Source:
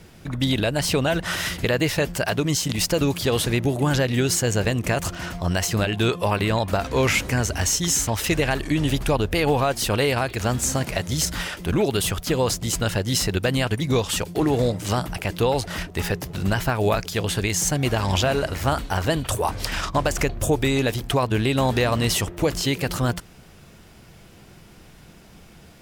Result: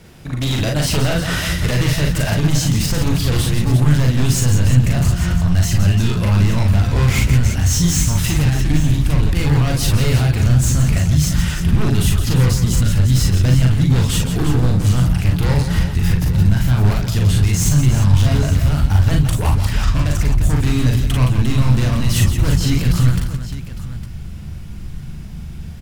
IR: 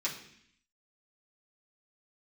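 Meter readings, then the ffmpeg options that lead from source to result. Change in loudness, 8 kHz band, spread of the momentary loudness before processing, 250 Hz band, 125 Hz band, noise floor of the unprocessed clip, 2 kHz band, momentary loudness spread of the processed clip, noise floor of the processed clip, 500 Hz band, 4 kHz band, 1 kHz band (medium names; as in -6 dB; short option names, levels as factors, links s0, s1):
+6.5 dB, +2.0 dB, 5 LU, +5.5 dB, +12.0 dB, -48 dBFS, 0.0 dB, 7 LU, -29 dBFS, -4.5 dB, +1.0 dB, -2.5 dB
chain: -filter_complex "[0:a]aeval=exprs='0.133*(abs(mod(val(0)/0.133+3,4)-2)-1)':c=same,asubboost=boost=9:cutoff=150,alimiter=limit=0.282:level=0:latency=1:release=85,asplit=2[s0][s1];[s1]aecho=0:1:40|54|168|349|858:0.708|0.422|0.376|0.335|0.224[s2];[s0][s2]amix=inputs=2:normalize=0,volume=1.19"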